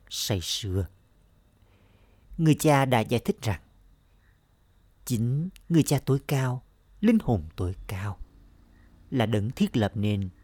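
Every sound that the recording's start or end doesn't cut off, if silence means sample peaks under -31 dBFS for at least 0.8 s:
2.39–3.56
5.07–8.22

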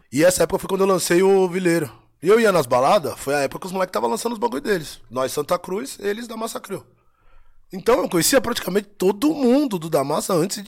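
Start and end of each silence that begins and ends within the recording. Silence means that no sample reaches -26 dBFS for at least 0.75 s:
6.78–7.73

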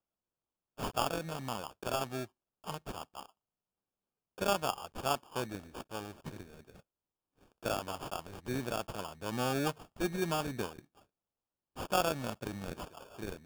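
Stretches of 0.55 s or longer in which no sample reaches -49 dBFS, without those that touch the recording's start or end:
3.26–4.38
6.8–7.63
10.79–11.77

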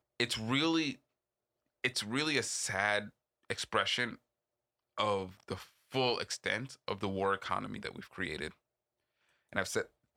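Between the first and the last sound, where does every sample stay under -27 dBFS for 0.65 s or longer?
0.9–1.84
4.05–4.99
8.47–9.56

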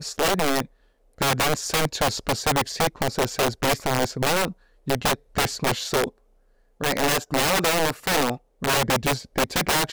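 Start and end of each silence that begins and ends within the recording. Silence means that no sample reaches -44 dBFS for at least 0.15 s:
0.66–1.18
4.53–4.87
5.16–5.35
6.1–6.8
8.37–8.62

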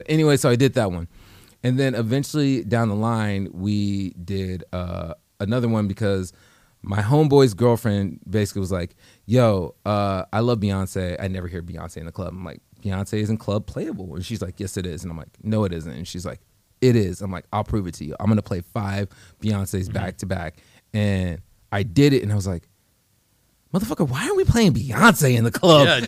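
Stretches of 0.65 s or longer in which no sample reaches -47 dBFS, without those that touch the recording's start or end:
22.64–23.73

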